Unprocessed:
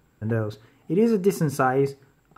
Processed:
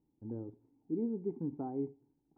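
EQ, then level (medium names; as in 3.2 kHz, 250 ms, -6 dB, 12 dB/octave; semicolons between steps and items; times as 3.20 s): cascade formant filter u; treble shelf 3 kHz +7 dB; -6.0 dB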